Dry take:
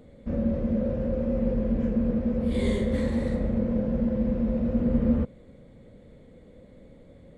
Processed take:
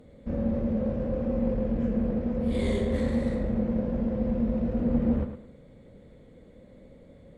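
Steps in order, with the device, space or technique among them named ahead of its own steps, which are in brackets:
rockabilly slapback (tube saturation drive 15 dB, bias 0.4; tape delay 105 ms, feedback 30%, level −7 dB, low-pass 4,100 Hz)

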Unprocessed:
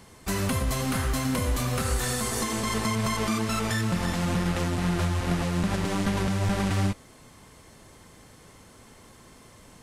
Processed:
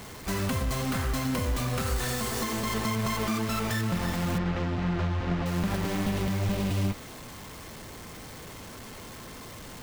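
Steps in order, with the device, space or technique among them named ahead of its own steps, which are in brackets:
0:05.95–0:06.87: healed spectral selection 690–2,400 Hz both
early CD player with a faulty converter (converter with a step at zero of −36 dBFS; converter with an unsteady clock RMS 0.02 ms)
0:04.38–0:05.46: high-frequency loss of the air 160 metres
level −3 dB

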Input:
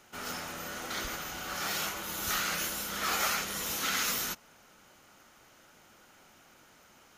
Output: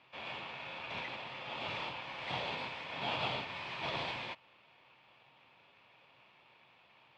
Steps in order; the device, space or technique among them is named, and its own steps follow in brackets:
ring modulator pedal into a guitar cabinet (ring modulator with a square carrier 2,000 Hz; loudspeaker in its box 91–3,400 Hz, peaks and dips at 130 Hz +9 dB, 930 Hz +9 dB, 1,600 Hz −4 dB, 2,500 Hz +7 dB)
level −5 dB

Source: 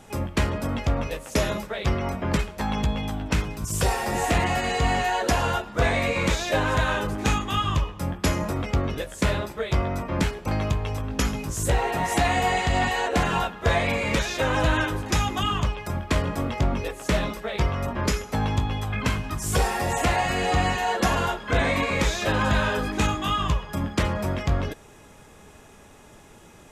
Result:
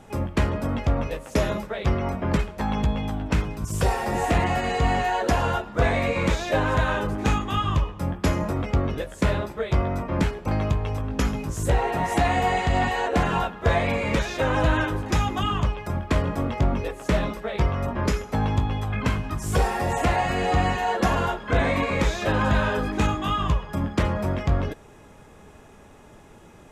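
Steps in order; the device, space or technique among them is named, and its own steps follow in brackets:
behind a face mask (high-shelf EQ 2,400 Hz −8 dB)
level +1.5 dB

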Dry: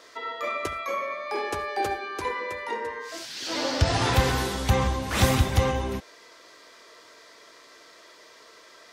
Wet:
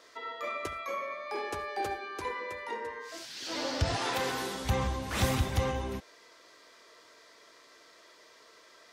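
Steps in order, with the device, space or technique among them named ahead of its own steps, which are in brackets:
parallel distortion (in parallel at −10 dB: hard clipping −22.5 dBFS, distortion −8 dB)
0:03.95–0:04.64: on the sum: high-pass filter 360 Hz → 170 Hz 12 dB per octave
level −8.5 dB

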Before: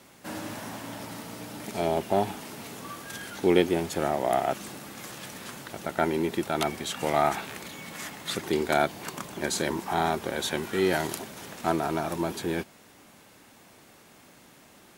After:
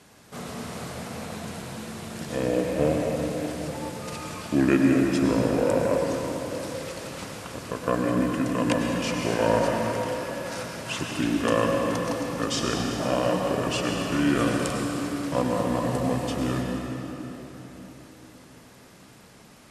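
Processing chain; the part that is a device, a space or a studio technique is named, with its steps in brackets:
slowed and reverbed (speed change −24%; convolution reverb RT60 3.9 s, pre-delay 92 ms, DRR 0.5 dB)

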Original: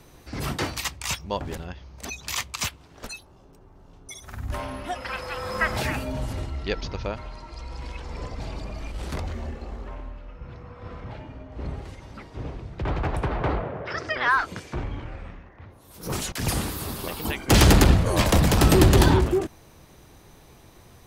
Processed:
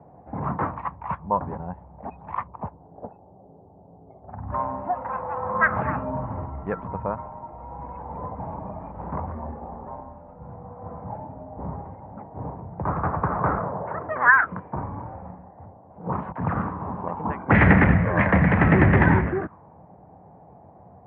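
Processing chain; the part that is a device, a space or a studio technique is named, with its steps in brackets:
0:02.47–0:04.30: drawn EQ curve 210 Hz 0 dB, 450 Hz +4 dB, 2,100 Hz −14 dB
envelope filter bass rig (envelope-controlled low-pass 740–2,000 Hz up, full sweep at −16 dBFS; loudspeaker in its box 74–2,100 Hz, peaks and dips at 180 Hz +7 dB, 360 Hz −6 dB, 1,300 Hz −3 dB)

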